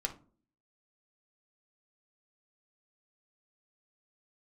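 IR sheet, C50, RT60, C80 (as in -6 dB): 13.0 dB, not exponential, 20.0 dB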